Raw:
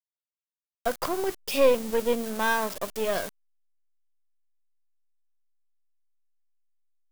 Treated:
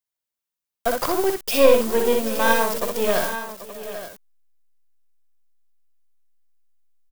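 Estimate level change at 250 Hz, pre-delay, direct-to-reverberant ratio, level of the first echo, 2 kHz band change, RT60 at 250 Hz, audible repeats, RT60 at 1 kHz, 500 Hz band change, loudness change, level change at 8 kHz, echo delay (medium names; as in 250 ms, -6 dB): +6.5 dB, no reverb, no reverb, -4.0 dB, +5.5 dB, no reverb, 4, no reverb, +6.5 dB, +6.5 dB, +8.0 dB, 62 ms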